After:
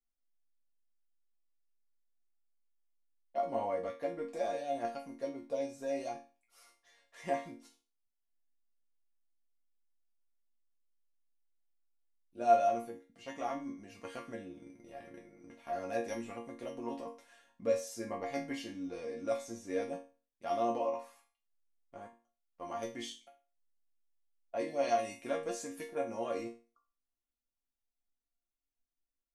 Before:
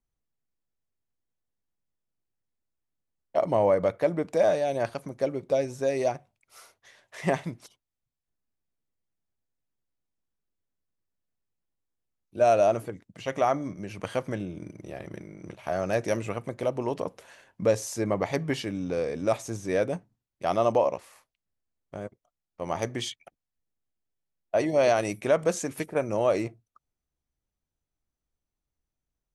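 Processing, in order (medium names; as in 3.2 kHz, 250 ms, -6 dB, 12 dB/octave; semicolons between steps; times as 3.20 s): 20.92–22.66 s: dynamic bell 1.1 kHz, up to +7 dB, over -53 dBFS, Q 1.5; chord resonator A#3 minor, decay 0.34 s; trim +7.5 dB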